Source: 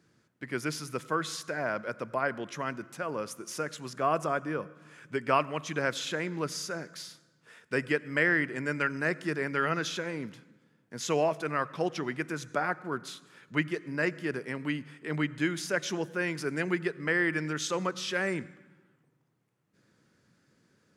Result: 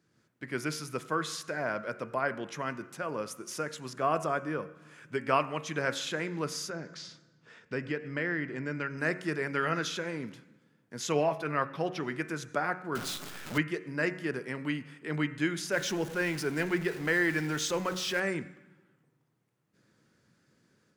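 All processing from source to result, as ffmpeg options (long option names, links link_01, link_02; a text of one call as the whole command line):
ffmpeg -i in.wav -filter_complex "[0:a]asettb=1/sr,asplit=3[link_01][link_02][link_03];[link_01]atrim=end=6.704[link_04];[link_02]atrim=start=6.7:end=8.98,asetpts=PTS-STARTPTS,afade=type=in:duration=0.004:curve=qsin,afade=type=out:start_time=2.276:duration=0.004:curve=qsin,lowpass=frequency=6600:width=0.5412,lowpass=frequency=6600:width=1.3066,lowshelf=frequency=420:gain=6,acompressor=threshold=-39dB:ratio=1.5:attack=3.2:release=140:knee=1:detection=peak[link_05];[link_03]atrim=start=8.976[link_06];[link_04][link_05]acrossfade=duration=0.004:curve1=hsin:curve2=qsin[link_07];[link_07][link_06]acrossfade=duration=0.004:curve1=qsin:curve2=hsin,asettb=1/sr,asplit=3[link_08][link_09][link_10];[link_08]atrim=end=11.124[link_11];[link_09]atrim=start=11.12:end=12,asetpts=PTS-STARTPTS,afade=type=in:duration=0.004:curve=qsin,afade=type=out:start_time=0.876:duration=0.004:curve=qsin,equalizer=frequency=7500:width=1.5:gain=-9.5,aecho=1:1:7.3:0.32,atrim=end_sample=38808[link_12];[link_10]atrim=start=11.996[link_13];[link_11][link_12]acrossfade=duration=0.004:curve1=hsin:curve2=qsin[link_14];[link_14][link_13]acrossfade=duration=0.004:curve1=qsin:curve2=hsin,asettb=1/sr,asplit=3[link_15][link_16][link_17];[link_15]atrim=end=12.954[link_18];[link_16]atrim=start=12.95:end=13.58,asetpts=PTS-STARTPTS,afade=type=in:duration=0.004:curve=qsin,afade=type=out:start_time=0.626:duration=0.004:curve=qsin,aeval=exprs='val(0)+0.5*0.0178*sgn(val(0))':channel_layout=same,highpass=87,acrusher=bits=7:dc=4:mix=0:aa=0.000001[link_19];[link_17]atrim=start=13.576[link_20];[link_18][link_19]acrossfade=duration=0.004:curve1=hsin:curve2=qsin[link_21];[link_21][link_20]acrossfade=duration=0.004:curve1=qsin:curve2=hsin,asettb=1/sr,asplit=3[link_22][link_23][link_24];[link_22]atrim=end=15.724[link_25];[link_23]atrim=start=15.72:end=18.2,asetpts=PTS-STARTPTS,afade=type=in:duration=0.004:curve=qsin,afade=type=out:start_time=2.476:duration=0.004:curve=qsin,aeval=exprs='val(0)+0.5*0.0119*sgn(val(0))':channel_layout=same,bandreject=frequency=1200:width=16[link_26];[link_24]atrim=start=18.196[link_27];[link_25][link_26]acrossfade=duration=0.004:curve1=hsin:curve2=qsin[link_28];[link_28][link_27]acrossfade=duration=0.004:curve1=qsin:curve2=hsin,bandreject=frequency=91.75:width_type=h:width=4,bandreject=frequency=183.5:width_type=h:width=4,bandreject=frequency=275.25:width_type=h:width=4,bandreject=frequency=367:width_type=h:width=4,bandreject=frequency=458.75:width_type=h:width=4,bandreject=frequency=550.5:width_type=h:width=4,bandreject=frequency=642.25:width_type=h:width=4,bandreject=frequency=734:width_type=h:width=4,bandreject=frequency=825.75:width_type=h:width=4,bandreject=frequency=917.5:width_type=h:width=4,bandreject=frequency=1009.25:width_type=h:width=4,bandreject=frequency=1101:width_type=h:width=4,bandreject=frequency=1192.75:width_type=h:width=4,bandreject=frequency=1284.5:width_type=h:width=4,bandreject=frequency=1376.25:width_type=h:width=4,bandreject=frequency=1468:width_type=h:width=4,bandreject=frequency=1559.75:width_type=h:width=4,bandreject=frequency=1651.5:width_type=h:width=4,bandreject=frequency=1743.25:width_type=h:width=4,bandreject=frequency=1835:width_type=h:width=4,bandreject=frequency=1926.75:width_type=h:width=4,bandreject=frequency=2018.5:width_type=h:width=4,bandreject=frequency=2110.25:width_type=h:width=4,bandreject=frequency=2202:width_type=h:width=4,bandreject=frequency=2293.75:width_type=h:width=4,bandreject=frequency=2385.5:width_type=h:width=4,bandreject=frequency=2477.25:width_type=h:width=4,bandreject=frequency=2569:width_type=h:width=4,bandreject=frequency=2660.75:width_type=h:width=4,bandreject=frequency=2752.5:width_type=h:width=4,bandreject=frequency=2844.25:width_type=h:width=4,dynaudnorm=framelen=100:gausssize=3:maxgain=5.5dB,volume=-6dB" out.wav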